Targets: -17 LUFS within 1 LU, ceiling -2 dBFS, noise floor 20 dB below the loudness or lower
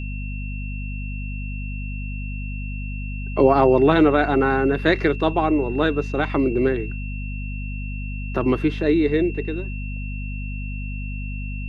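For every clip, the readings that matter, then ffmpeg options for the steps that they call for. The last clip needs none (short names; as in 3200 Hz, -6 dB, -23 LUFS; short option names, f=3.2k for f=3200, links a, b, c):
hum 50 Hz; harmonics up to 250 Hz; hum level -26 dBFS; steady tone 2700 Hz; tone level -37 dBFS; loudness -22.5 LUFS; peak -3.5 dBFS; loudness target -17.0 LUFS
-> -af "bandreject=f=50:t=h:w=4,bandreject=f=100:t=h:w=4,bandreject=f=150:t=h:w=4,bandreject=f=200:t=h:w=4,bandreject=f=250:t=h:w=4"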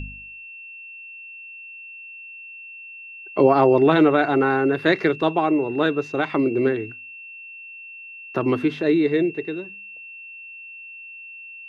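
hum none; steady tone 2700 Hz; tone level -37 dBFS
-> -af "bandreject=f=2.7k:w=30"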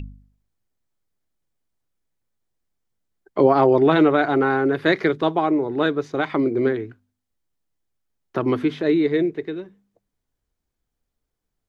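steady tone none; loudness -20.0 LUFS; peak -4.0 dBFS; loudness target -17.0 LUFS
-> -af "volume=3dB,alimiter=limit=-2dB:level=0:latency=1"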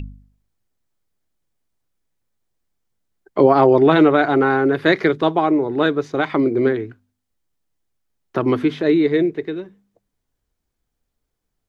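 loudness -17.0 LUFS; peak -2.0 dBFS; noise floor -77 dBFS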